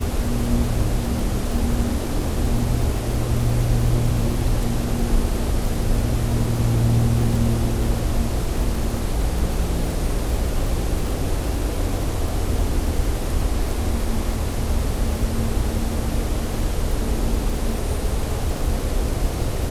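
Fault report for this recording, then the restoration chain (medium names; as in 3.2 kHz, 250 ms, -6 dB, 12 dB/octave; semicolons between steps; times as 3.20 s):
crackle 45 per s -27 dBFS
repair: de-click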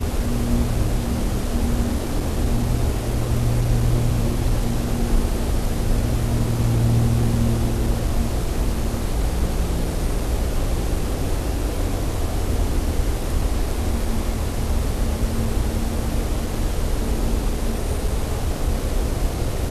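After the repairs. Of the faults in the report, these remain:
nothing left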